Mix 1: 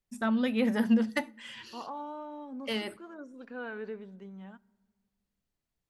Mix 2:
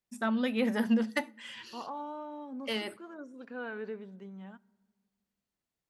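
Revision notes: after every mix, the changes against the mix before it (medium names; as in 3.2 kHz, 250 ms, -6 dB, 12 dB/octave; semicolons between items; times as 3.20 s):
first voice: add high-pass 200 Hz 6 dB/octave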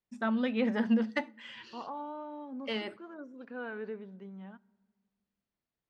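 master: add distance through air 140 m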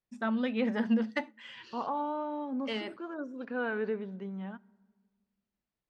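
first voice: send -7.0 dB; second voice +7.0 dB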